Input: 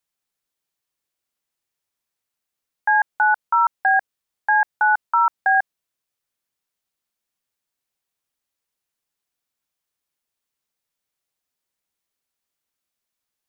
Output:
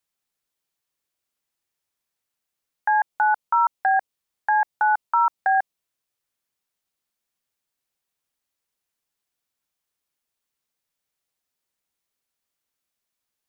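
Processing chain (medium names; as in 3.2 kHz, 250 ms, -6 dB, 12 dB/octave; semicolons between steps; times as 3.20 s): dynamic bell 1.6 kHz, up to -7 dB, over -32 dBFS, Q 2.7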